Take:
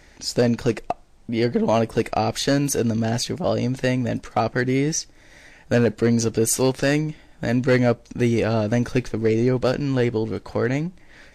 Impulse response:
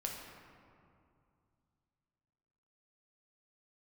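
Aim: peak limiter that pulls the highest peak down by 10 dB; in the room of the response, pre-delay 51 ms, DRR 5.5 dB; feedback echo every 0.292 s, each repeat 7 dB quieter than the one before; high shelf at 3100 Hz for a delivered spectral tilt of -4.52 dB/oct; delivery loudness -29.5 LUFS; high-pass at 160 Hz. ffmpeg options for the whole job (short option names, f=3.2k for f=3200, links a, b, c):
-filter_complex "[0:a]highpass=160,highshelf=f=3.1k:g=4,alimiter=limit=-15.5dB:level=0:latency=1,aecho=1:1:292|584|876|1168|1460:0.447|0.201|0.0905|0.0407|0.0183,asplit=2[a][b];[1:a]atrim=start_sample=2205,adelay=51[c];[b][c]afir=irnorm=-1:irlink=0,volume=-6dB[d];[a][d]amix=inputs=2:normalize=0,volume=-4.5dB"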